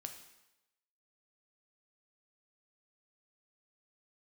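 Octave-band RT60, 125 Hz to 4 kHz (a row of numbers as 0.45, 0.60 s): 0.80, 0.85, 0.95, 0.95, 0.90, 0.90 s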